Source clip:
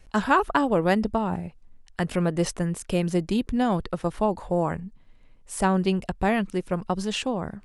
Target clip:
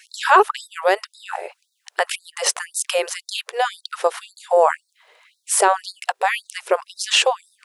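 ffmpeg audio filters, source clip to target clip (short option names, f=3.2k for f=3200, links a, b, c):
-filter_complex "[0:a]asplit=2[a][b];[b]acompressor=threshold=-33dB:ratio=6,volume=-1dB[c];[a][c]amix=inputs=2:normalize=0,alimiter=level_in=13dB:limit=-1dB:release=50:level=0:latency=1,afftfilt=real='re*gte(b*sr/1024,360*pow(3700/360,0.5+0.5*sin(2*PI*1.9*pts/sr)))':imag='im*gte(b*sr/1024,360*pow(3700/360,0.5+0.5*sin(2*PI*1.9*pts/sr)))':win_size=1024:overlap=0.75,volume=-1.5dB"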